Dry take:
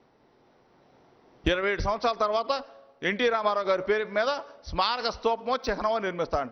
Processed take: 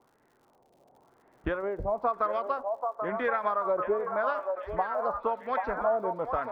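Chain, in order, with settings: LFO low-pass sine 0.96 Hz 640–1800 Hz; crackle 110/s -48 dBFS; delay with a stepping band-pass 0.785 s, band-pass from 760 Hz, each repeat 0.7 oct, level -2 dB; gain -6.5 dB

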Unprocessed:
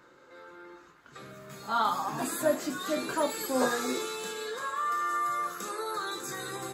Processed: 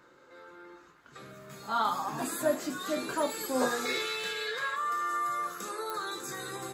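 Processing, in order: 3.85–4.76 graphic EQ 125/250/500/1000/2000/4000/8000 Hz +7/-11/+3/-4/+11/+6/-5 dB; pops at 5.9, -19 dBFS; gain -1.5 dB

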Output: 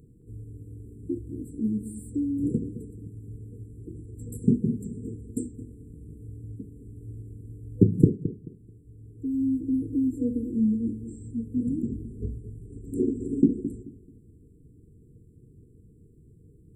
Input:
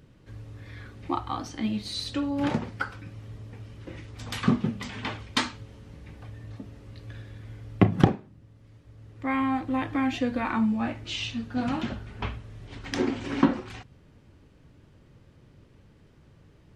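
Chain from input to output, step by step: FFT band-reject 490–7300 Hz; darkening echo 0.217 s, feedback 25%, low-pass 1600 Hz, level -12 dB; gain +1.5 dB

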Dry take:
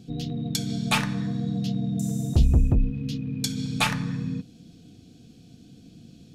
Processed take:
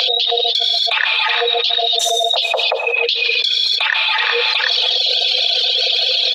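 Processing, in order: formant sharpening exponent 1.5; steep high-pass 510 Hz 96 dB/oct; on a send: feedback echo 0.37 s, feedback 24%, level -22 dB; on the sum: upward compressor, threshold -41 dBFS; resonant high shelf 5300 Hz -13.5 dB, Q 3; non-linear reverb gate 0.32 s rising, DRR 9 dB; reverb removal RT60 1.3 s; bell 4000 Hz +8 dB 2.4 oct; maximiser +14.5 dB; fast leveller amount 100%; gain -8 dB

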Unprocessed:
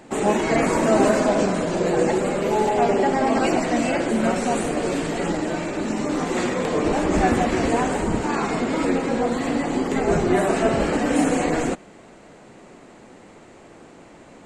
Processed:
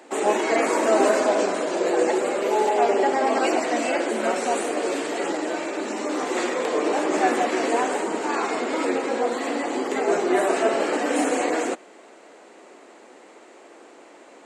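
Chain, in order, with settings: HPF 310 Hz 24 dB/oct

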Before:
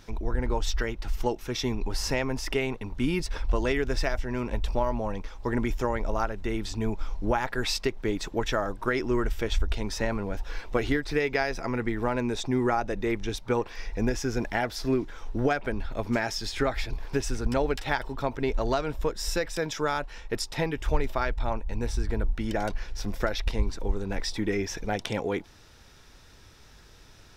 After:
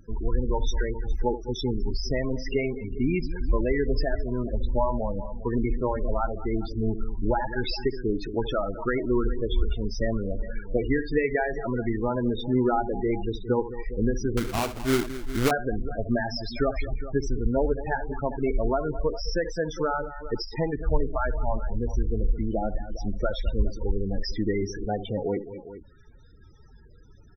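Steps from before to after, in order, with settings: tapped delay 71/212/408 ms -12.5/-13.5/-14 dB; loudest bins only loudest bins 16; 14.37–15.51 sample-rate reducer 1800 Hz, jitter 20%; gain +2 dB

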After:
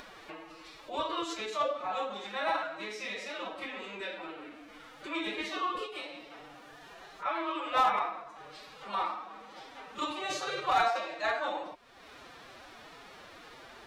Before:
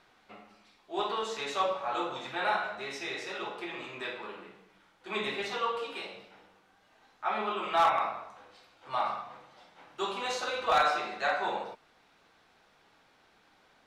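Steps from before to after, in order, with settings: reverse echo 31 ms -22.5 dB; formant-preserving pitch shift +7.5 st; upward compressor, threshold -36 dBFS; gain -1 dB

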